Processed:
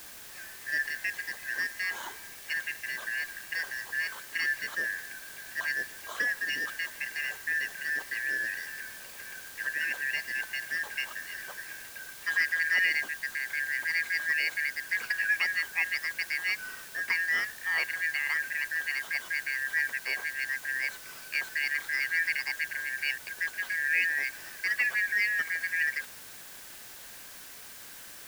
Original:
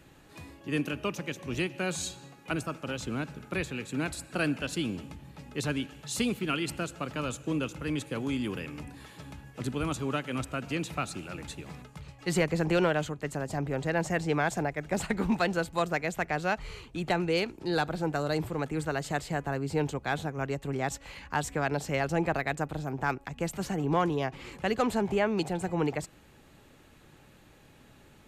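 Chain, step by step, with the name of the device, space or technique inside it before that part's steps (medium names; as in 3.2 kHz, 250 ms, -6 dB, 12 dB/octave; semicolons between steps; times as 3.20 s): split-band scrambled radio (four frequency bands reordered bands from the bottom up 3142; band-pass 330–3100 Hz; white noise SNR 14 dB)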